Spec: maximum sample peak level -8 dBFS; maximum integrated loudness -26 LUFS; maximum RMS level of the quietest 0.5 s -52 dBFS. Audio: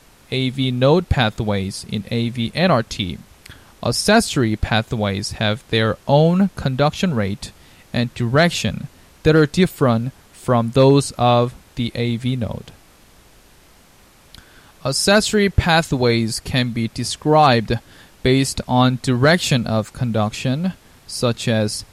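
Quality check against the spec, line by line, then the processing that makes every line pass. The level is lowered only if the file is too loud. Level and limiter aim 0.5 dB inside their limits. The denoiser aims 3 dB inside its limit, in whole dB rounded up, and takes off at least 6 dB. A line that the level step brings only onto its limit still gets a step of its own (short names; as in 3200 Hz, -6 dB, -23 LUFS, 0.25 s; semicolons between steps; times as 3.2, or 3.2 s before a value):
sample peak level -3.0 dBFS: fail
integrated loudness -18.5 LUFS: fail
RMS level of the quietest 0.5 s -50 dBFS: fail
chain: gain -8 dB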